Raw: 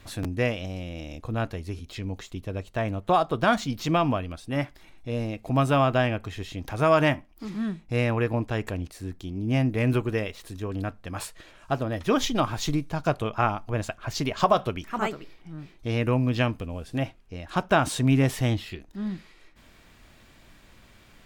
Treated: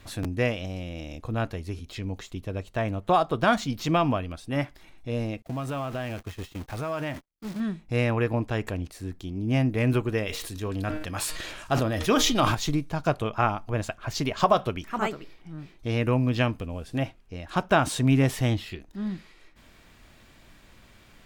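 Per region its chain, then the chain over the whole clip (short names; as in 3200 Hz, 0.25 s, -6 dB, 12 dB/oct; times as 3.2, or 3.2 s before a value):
5.42–7.6 zero-crossing step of -30.5 dBFS + gate -31 dBFS, range -55 dB + compressor 3:1, threshold -31 dBFS
10.27–12.55 high shelf 2300 Hz +6.5 dB + de-hum 154.3 Hz, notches 32 + sustainer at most 34 dB/s
whole clip: dry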